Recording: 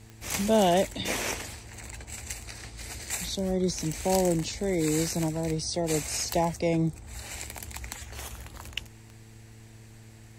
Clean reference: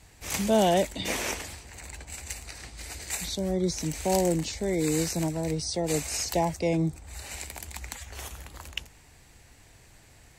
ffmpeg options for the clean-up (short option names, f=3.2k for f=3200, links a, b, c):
-af "adeclick=t=4,bandreject=f=111:t=h:w=4,bandreject=f=222:t=h:w=4,bandreject=f=333:t=h:w=4,bandreject=f=444:t=h:w=4"